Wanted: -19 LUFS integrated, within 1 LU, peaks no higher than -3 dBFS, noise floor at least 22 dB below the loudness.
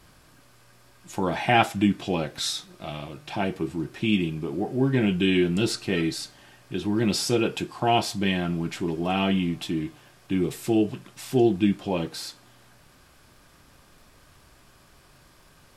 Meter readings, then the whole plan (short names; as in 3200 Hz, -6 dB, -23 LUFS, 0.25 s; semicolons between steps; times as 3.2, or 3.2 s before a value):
ticks 21/s; loudness -25.5 LUFS; peak -4.5 dBFS; loudness target -19.0 LUFS
-> de-click; gain +6.5 dB; limiter -3 dBFS